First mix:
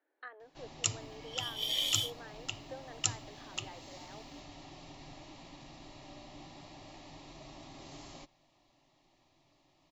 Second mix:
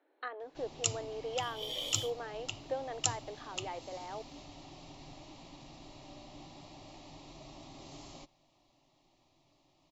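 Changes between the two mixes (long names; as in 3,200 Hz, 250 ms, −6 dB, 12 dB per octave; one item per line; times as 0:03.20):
speech +10.5 dB
second sound: add tilt shelving filter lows +9 dB, about 1,400 Hz
master: add parametric band 1,700 Hz −7.5 dB 0.58 octaves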